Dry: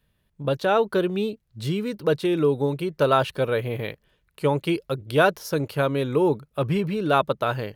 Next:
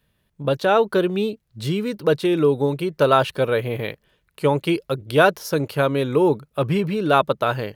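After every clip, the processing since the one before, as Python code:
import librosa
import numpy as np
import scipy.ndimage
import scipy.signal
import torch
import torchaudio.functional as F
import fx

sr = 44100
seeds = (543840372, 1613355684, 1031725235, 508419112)

y = fx.low_shelf(x, sr, hz=75.0, db=-6.5)
y = y * 10.0 ** (3.5 / 20.0)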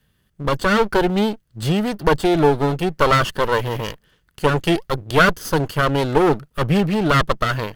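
y = fx.lower_of_two(x, sr, delay_ms=0.64)
y = y * 10.0 ** (4.5 / 20.0)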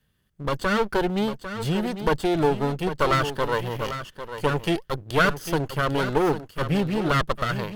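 y = x + 10.0 ** (-10.5 / 20.0) * np.pad(x, (int(799 * sr / 1000.0), 0))[:len(x)]
y = y * 10.0 ** (-6.0 / 20.0)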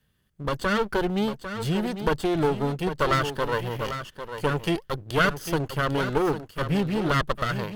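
y = fx.diode_clip(x, sr, knee_db=-15.5)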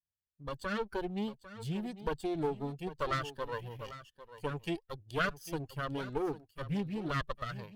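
y = fx.bin_expand(x, sr, power=1.5)
y = fx.doppler_dist(y, sr, depth_ms=0.14)
y = y * 10.0 ** (-8.5 / 20.0)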